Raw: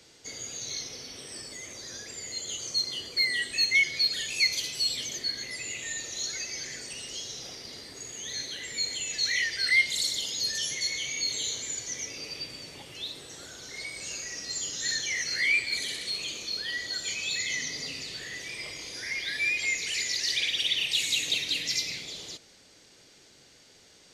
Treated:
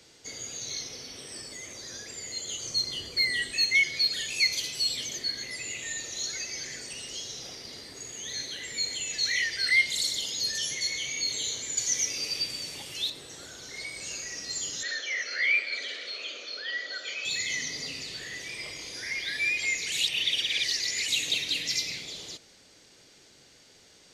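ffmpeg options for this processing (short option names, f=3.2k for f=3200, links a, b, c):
-filter_complex "[0:a]asettb=1/sr,asplit=3[a][b][c];[a]atrim=end=2.644[d];[b]atrim=start=2.64:end=3.51,asetpts=PTS-STARTPTS,afade=t=in:d=0.004:c=qsin,afade=t=out:st=0.866:d=0.004:c=qsin,lowshelf=f=120:g=10.5[e];[c]atrim=start=3.506[f];[d][e]acrossfade=d=0.004:c1=hsin:c2=qsin[g];[g][f]acrossfade=d=0.004:c1=qsin:c2=hsin,asettb=1/sr,asplit=3[h][i][j];[h]atrim=end=11.774[k];[i]atrim=start=11.77:end=13.1,asetpts=PTS-STARTPTS,afade=t=in:d=0.004:c=qsin,afade=t=out:st=1.326:d=0.004:c=qsin,highshelf=f=3k:g=10.5[l];[j]atrim=start=13.096[m];[k][l]acrossfade=d=0.004:c1=hsin:c2=qsin[n];[n][m]acrossfade=d=0.004:c1=qsin:c2=hsin,asettb=1/sr,asplit=3[o][p][q];[o]atrim=end=14.834[r];[p]atrim=start=14.83:end=17.25,asetpts=PTS-STARTPTS,afade=t=in:d=0.004:c=qsin,afade=t=out:st=2.416:d=0.004:c=qsin,highpass=f=300:w=0.5412,highpass=f=300:w=1.3066,equalizer=f=340:t=q:w=4:g=-6,equalizer=f=570:t=q:w=4:g=7,equalizer=f=920:t=q:w=4:g=-8,equalizer=f=1.4k:t=q:w=4:g=8,equalizer=f=4.2k:t=q:w=4:g=-5,lowpass=f=5k:w=0.5412,lowpass=f=5k:w=1.3066[s];[q]atrim=start=17.246[t];[r][s]acrossfade=d=0.004:c1=hsin:c2=qsin[u];[u][t]acrossfade=d=0.004:c1=qsin:c2=hsin,asplit=3[v][w][x];[v]atrim=end=19.922[y];[w]atrim=start=19.918:end=21.082,asetpts=PTS-STARTPTS,areverse[z];[x]atrim=start=21.078[aa];[y][z]acrossfade=d=0.004:c1=hsin:c2=hsin[ab];[ab][aa]acrossfade=d=0.004:c1=hsin:c2=hsin"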